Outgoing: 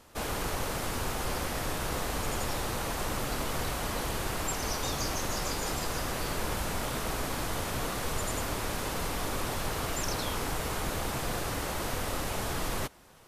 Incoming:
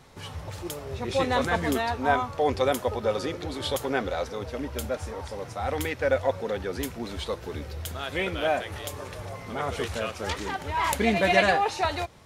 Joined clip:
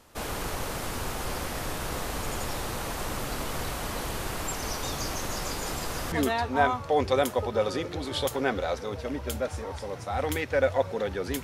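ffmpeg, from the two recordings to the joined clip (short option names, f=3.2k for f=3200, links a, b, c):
-filter_complex "[0:a]apad=whole_dur=11.43,atrim=end=11.43,atrim=end=6.122[a];[1:a]atrim=start=1.608:end=6.92[b];[a][b]acrossfade=d=0.004:c1=hsin:c2=hsin"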